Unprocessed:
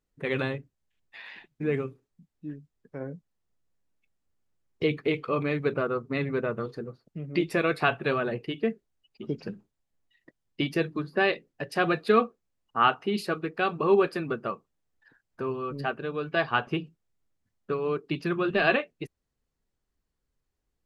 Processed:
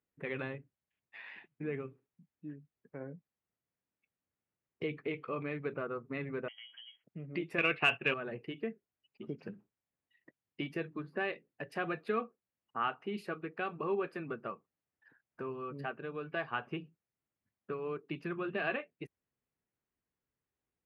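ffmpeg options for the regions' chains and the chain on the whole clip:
ffmpeg -i in.wav -filter_complex "[0:a]asettb=1/sr,asplit=3[link_01][link_02][link_03];[link_01]atrim=end=6.484[link_04];[link_02]atrim=start=6.48:end=7.04,asetpts=PTS-STARTPTS,afade=type=in:duration=0.004:curve=qsin,afade=type=out:start_time=0.556:duration=0.004:curve=qsin,acompressor=threshold=-42dB:ratio=3:attack=3.2:release=140:knee=1:detection=peak,lowpass=frequency=2900:width_type=q:width=0.5098,lowpass=frequency=2900:width_type=q:width=0.6013,lowpass=frequency=2900:width_type=q:width=0.9,lowpass=frequency=2900:width_type=q:width=2.563,afreqshift=-3400,bandreject=frequency=279.8:width_type=h:width=4,bandreject=frequency=559.6:width_type=h:width=4,bandreject=frequency=839.4:width_type=h:width=4,bandreject=frequency=1119.2:width_type=h:width=4,bandreject=frequency=1399:width_type=h:width=4,bandreject=frequency=1678.8:width_type=h:width=4,bandreject=frequency=1958.6:width_type=h:width=4[link_05];[link_03]atrim=start=7.036[link_06];[link_04][link_05]acrossfade=duration=0.004:curve1=hsin:curve2=qsin[link_07];[link_07][link_06]acrossfade=duration=0.004:curve1=qsin:curve2=hsin,asettb=1/sr,asplit=3[link_08][link_09][link_10];[link_08]atrim=end=7.584[link_11];[link_09]atrim=start=7.58:end=8.14,asetpts=PTS-STARTPTS,afade=type=in:duration=0.004:curve=qsin,afade=type=out:start_time=0.556:duration=0.004:curve=qsin,agate=range=-33dB:threshold=-36dB:ratio=3:release=100:detection=peak,lowpass=frequency=2800:width_type=q:width=7.5,acontrast=54[link_12];[link_10]atrim=start=8.136[link_13];[link_11][link_12]acrossfade=duration=0.004:curve1=hsin:curve2=qsin[link_14];[link_14][link_13]acrossfade=duration=0.004:curve1=qsin:curve2=hsin,highpass=97,highshelf=frequency=3200:width_type=q:width=1.5:gain=-7.5,acompressor=threshold=-36dB:ratio=1.5,volume=-6dB" out.wav

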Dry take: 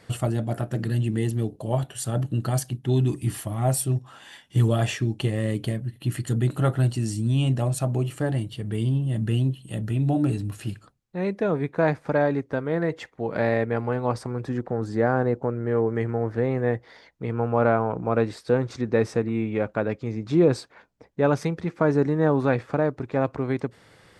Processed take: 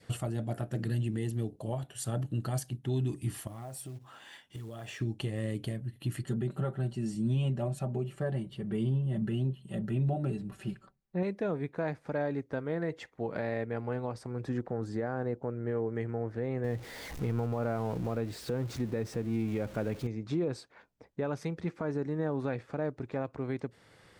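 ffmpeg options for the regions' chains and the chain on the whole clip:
ffmpeg -i in.wav -filter_complex "[0:a]asettb=1/sr,asplit=3[link_01][link_02][link_03];[link_01]atrim=end=3.474[link_04];[link_02]atrim=start=3.47:end=5.01,asetpts=PTS-STARTPTS,afade=type=in:duration=0.004:curve=qsin,afade=type=out:start_time=1.536:duration=0.004:curve=qsin,bass=frequency=250:gain=-4,treble=frequency=4000:gain=-3,acompressor=threshold=-34dB:ratio=8:attack=3.2:release=140:knee=1:detection=peak,acrusher=bits=6:mode=log:mix=0:aa=0.000001[link_05];[link_03]atrim=start=5.006[link_06];[link_04][link_05]acrossfade=duration=0.004:curve1=hsin:curve2=qsin[link_07];[link_07][link_06]acrossfade=duration=0.004:curve1=qsin:curve2=hsin,asettb=1/sr,asplit=3[link_08][link_09][link_10];[link_08]atrim=end=6.234[link_11];[link_09]atrim=start=6.23:end=11.23,asetpts=PTS-STARTPTS,afade=type=in:duration=0.004:curve=qsin,afade=type=out:start_time=4.996:duration=0.004:curve=qsin,highshelf=frequency=3100:gain=-11.5,aecho=1:1:5.2:0.78,atrim=end_sample=220500[link_12];[link_10]atrim=start=11.226[link_13];[link_11][link_12]acrossfade=duration=0.004:curve1=hsin:curve2=qsin[link_14];[link_14][link_13]acrossfade=duration=0.004:curve1=qsin:curve2=hsin,asettb=1/sr,asplit=3[link_15][link_16][link_17];[link_15]atrim=end=16.644[link_18];[link_16]atrim=start=16.64:end=20.07,asetpts=PTS-STARTPTS,afade=type=in:duration=0.004:curve=qsin,afade=type=out:start_time=3.426:duration=0.004:curve=qsin,aeval=exprs='val(0)+0.5*0.02*sgn(val(0))':channel_layout=same,lowshelf=frequency=260:gain=6.5[link_19];[link_17]atrim=start=20.066[link_20];[link_18][link_19]acrossfade=duration=0.004:curve1=hsin:curve2=qsin[link_21];[link_21][link_20]acrossfade=duration=0.004:curve1=qsin:curve2=hsin,adynamicequalizer=threshold=0.00708:dfrequency=1100:dqfactor=1.8:tfrequency=1100:tqfactor=1.8:attack=5:release=100:ratio=0.375:range=2:mode=cutabove:tftype=bell,alimiter=limit=-18dB:level=0:latency=1:release=390,volume=-5dB" out.wav

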